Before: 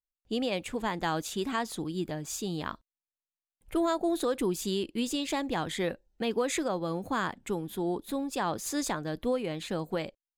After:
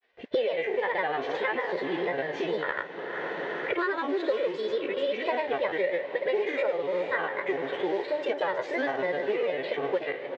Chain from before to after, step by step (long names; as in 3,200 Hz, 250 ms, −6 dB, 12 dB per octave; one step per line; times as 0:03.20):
peak hold with a decay on every bin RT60 0.58 s
comb filter 2.3 ms, depth 96%
granular cloud, pitch spread up and down by 3 semitones
noise that follows the level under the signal 17 dB
loudspeaker in its box 280–2,900 Hz, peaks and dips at 310 Hz −9 dB, 580 Hz +8 dB, 880 Hz −4 dB, 1,300 Hz −9 dB, 1,900 Hz +7 dB, 2,700 Hz −3 dB
on a send: feedback delay with all-pass diffusion 456 ms, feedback 62%, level −15 dB
on the sum: multiband upward and downward compressor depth 100%